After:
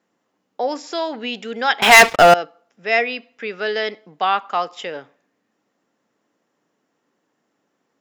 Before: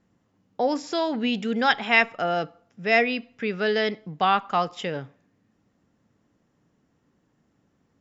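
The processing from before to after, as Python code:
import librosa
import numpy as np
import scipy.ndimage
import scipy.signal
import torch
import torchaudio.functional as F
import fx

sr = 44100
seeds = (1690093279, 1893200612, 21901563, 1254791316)

y = scipy.signal.sosfilt(scipy.signal.butter(2, 380.0, 'highpass', fs=sr, output='sos'), x)
y = fx.leveller(y, sr, passes=5, at=(1.82, 2.34))
y = F.gain(torch.from_numpy(y), 2.5).numpy()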